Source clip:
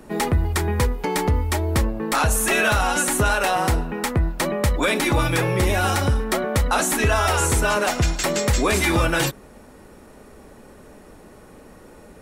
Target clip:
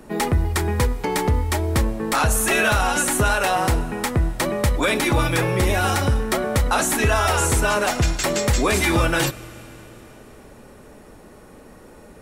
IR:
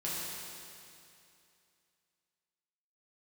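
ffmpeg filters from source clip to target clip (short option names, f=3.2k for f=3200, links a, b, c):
-filter_complex "[0:a]asplit=2[a][b];[1:a]atrim=start_sample=2205,asetrate=29106,aresample=44100,highshelf=f=10k:g=6[c];[b][c]afir=irnorm=-1:irlink=0,volume=-25.5dB[d];[a][d]amix=inputs=2:normalize=0"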